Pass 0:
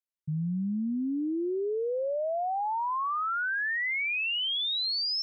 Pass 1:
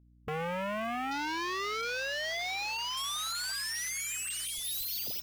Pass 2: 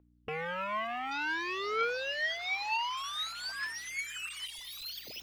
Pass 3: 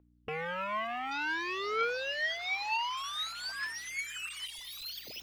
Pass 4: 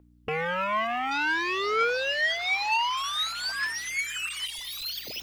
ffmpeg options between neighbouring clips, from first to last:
-af "aeval=exprs='(mod(31.6*val(0)+1,2)-1)/31.6':c=same,afwtdn=0.01,aeval=exprs='val(0)+0.001*(sin(2*PI*60*n/s)+sin(2*PI*2*60*n/s)/2+sin(2*PI*3*60*n/s)/3+sin(2*PI*4*60*n/s)/4+sin(2*PI*5*60*n/s)/5)':c=same"
-filter_complex "[0:a]acrossover=split=330 4200:gain=0.178 1 0.141[a][b][c];[a][b][c]amix=inputs=3:normalize=0,areverse,acompressor=mode=upward:threshold=-49dB:ratio=2.5,areverse,aphaser=in_gain=1:out_gain=1:delay=1.1:decay=0.63:speed=0.55:type=triangular"
-af anull
-af "asoftclip=type=tanh:threshold=-24dB,volume=8dB"

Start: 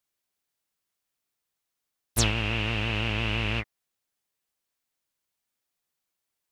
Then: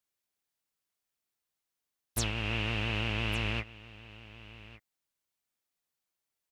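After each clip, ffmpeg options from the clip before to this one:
-af "alimiter=limit=-15.5dB:level=0:latency=1:release=345,aecho=1:1:1160:0.119,volume=-4dB"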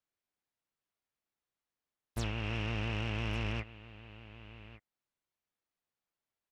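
-af "lowpass=f=2k:p=1,asoftclip=type=tanh:threshold=-28dB"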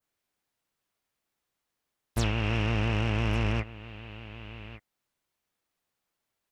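-af "adynamicequalizer=threshold=0.00178:dfrequency=3400:dqfactor=0.86:tfrequency=3400:tqfactor=0.86:attack=5:release=100:ratio=0.375:range=2.5:mode=cutabove:tftype=bell,volume=8.5dB"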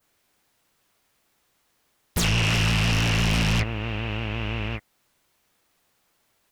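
-af "aeval=exprs='0.1*sin(PI/2*2.82*val(0)/0.1)':c=same,volume=2dB"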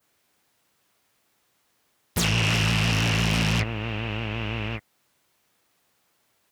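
-af "highpass=69"

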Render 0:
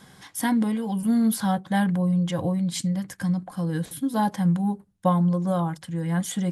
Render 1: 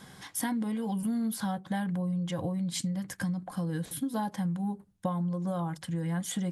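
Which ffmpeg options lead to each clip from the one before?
-af "acompressor=threshold=-29dB:ratio=6"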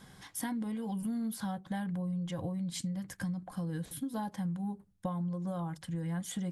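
-af "lowshelf=f=69:g=11.5,volume=-5.5dB"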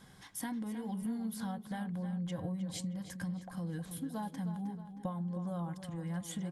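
-filter_complex "[0:a]asplit=2[a][b];[b]adelay=313,lowpass=f=4.9k:p=1,volume=-10dB,asplit=2[c][d];[d]adelay=313,lowpass=f=4.9k:p=1,volume=0.52,asplit=2[e][f];[f]adelay=313,lowpass=f=4.9k:p=1,volume=0.52,asplit=2[g][h];[h]adelay=313,lowpass=f=4.9k:p=1,volume=0.52,asplit=2[i][j];[j]adelay=313,lowpass=f=4.9k:p=1,volume=0.52,asplit=2[k][l];[l]adelay=313,lowpass=f=4.9k:p=1,volume=0.52[m];[a][c][e][g][i][k][m]amix=inputs=7:normalize=0,volume=-3dB"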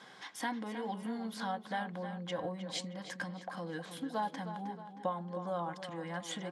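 -af "highpass=420,lowpass=4.7k,volume=8.5dB"

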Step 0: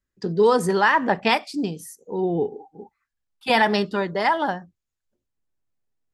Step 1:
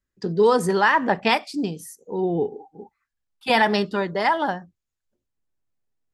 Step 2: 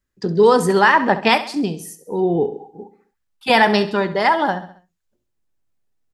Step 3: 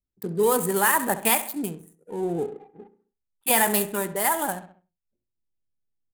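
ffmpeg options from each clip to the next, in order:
-af anull
-af "aecho=1:1:67|134|201|268:0.2|0.0938|0.0441|0.0207,volume=4.5dB"
-filter_complex "[0:a]adynamicsmooth=sensitivity=6:basefreq=590,asplit=2[a][b];[b]adelay=100,highpass=300,lowpass=3.4k,asoftclip=type=hard:threshold=-9.5dB,volume=-21dB[c];[a][c]amix=inputs=2:normalize=0,aexciter=amount=9.2:drive=9.3:freq=7.9k,volume=-9dB"

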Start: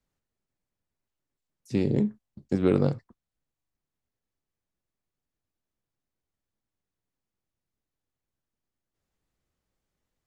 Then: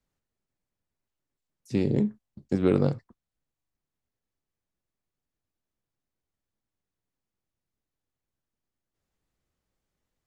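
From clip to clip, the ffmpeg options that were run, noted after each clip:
-af anull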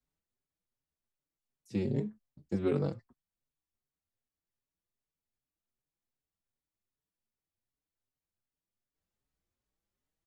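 -filter_complex "[0:a]asplit=2[a][b];[b]adelay=5.1,afreqshift=2.6[c];[a][c]amix=inputs=2:normalize=1,volume=-4.5dB"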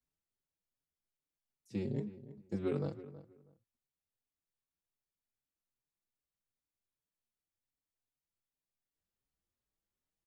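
-filter_complex "[0:a]asplit=2[a][b];[b]adelay=322,lowpass=f=1.9k:p=1,volume=-15dB,asplit=2[c][d];[d]adelay=322,lowpass=f=1.9k:p=1,volume=0.21[e];[a][c][e]amix=inputs=3:normalize=0,volume=-5dB"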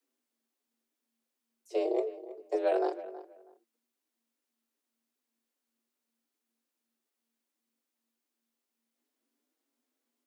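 -af "afreqshift=230,volume=7dB"

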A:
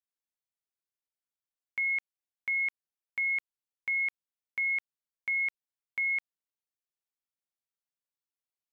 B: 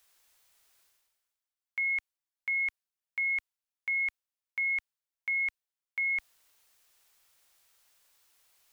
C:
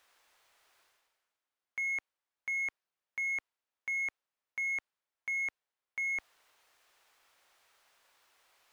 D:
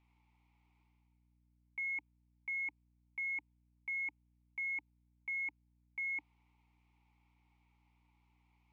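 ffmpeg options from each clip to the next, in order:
-af "equalizer=f=200:w=0.73:g=-14,areverse,acompressor=mode=upward:threshold=-46dB:ratio=2.5,areverse"
-filter_complex "[0:a]asplit=2[a][b];[b]highpass=f=720:p=1,volume=15dB,asoftclip=type=tanh:threshold=-25.5dB[c];[a][c]amix=inputs=2:normalize=0,lowpass=f=1.1k:p=1,volume=-6dB,volume=1.5dB"
-filter_complex "[0:a]asplit=3[a][b][c];[a]bandpass=f=300:t=q:w=8,volume=0dB[d];[b]bandpass=f=870:t=q:w=8,volume=-6dB[e];[c]bandpass=f=2.24k:t=q:w=8,volume=-9dB[f];[d][e][f]amix=inputs=3:normalize=0,aeval=exprs='val(0)+0.000126*(sin(2*PI*60*n/s)+sin(2*PI*2*60*n/s)/2+sin(2*PI*3*60*n/s)/3+sin(2*PI*4*60*n/s)/4+sin(2*PI*5*60*n/s)/5)':c=same,volume=6dB"

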